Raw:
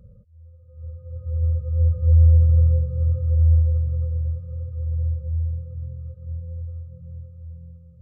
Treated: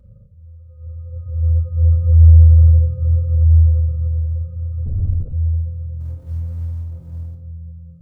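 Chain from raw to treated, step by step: 6.00–7.35 s: companding laws mixed up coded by mu; simulated room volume 2200 m³, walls furnished, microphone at 2.7 m; 4.86–5.33 s: LPC vocoder at 8 kHz whisper; trim -1 dB

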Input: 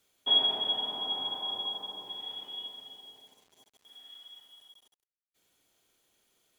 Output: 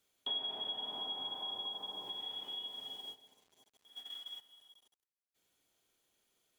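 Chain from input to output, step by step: gate -51 dBFS, range -15 dB; compression 3:1, threshold -54 dBFS, peak gain reduction 24 dB; trim +9 dB

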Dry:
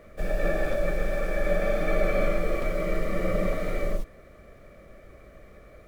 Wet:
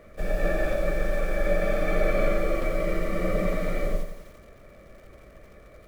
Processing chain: bit-crushed delay 87 ms, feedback 55%, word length 8-bit, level -9 dB

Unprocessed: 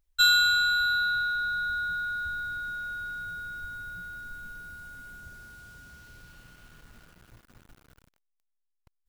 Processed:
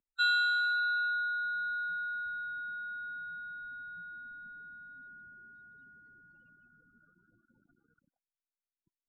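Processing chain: loudest bins only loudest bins 16; three-band isolator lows -23 dB, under 180 Hz, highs -24 dB, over 3.5 kHz; trim -4.5 dB

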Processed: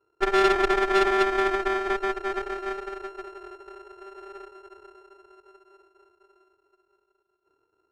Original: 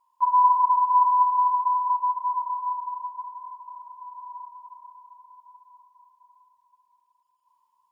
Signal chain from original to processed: sorted samples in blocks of 32 samples; tilt shelf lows +10 dB; Chebyshev shaper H 4 -18 dB, 8 -18 dB, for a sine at -5.5 dBFS; distance through air 70 m; trim -2.5 dB

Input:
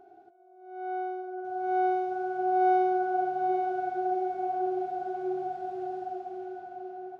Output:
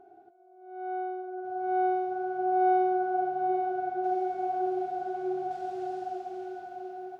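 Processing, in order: treble shelf 3 kHz -9 dB, from 4.04 s +3.5 dB, from 5.51 s +11 dB

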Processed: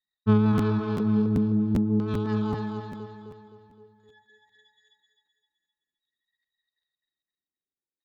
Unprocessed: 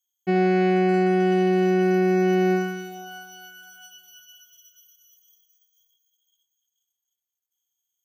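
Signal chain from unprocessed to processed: local Wiener filter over 9 samples; reverb removal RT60 1.5 s; rotary cabinet horn 5.5 Hz, later 1 Hz, at 3.06 s; pitch shift -9.5 st; LFO low-pass square 0.5 Hz 350–4100 Hz; feedback delay 259 ms, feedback 47%, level -4 dB; crackling interface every 0.39 s, samples 512, repeat, from 0.57 s; trim +3.5 dB

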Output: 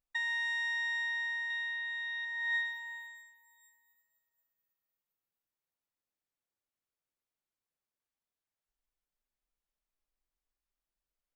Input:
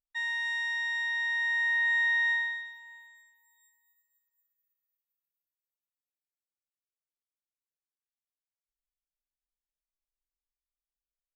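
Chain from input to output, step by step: compressor with a negative ratio -36 dBFS, ratio -1; 1.50–2.25 s: peaking EQ 3.3 kHz +13 dB 0.51 oct; tape noise reduction on one side only decoder only

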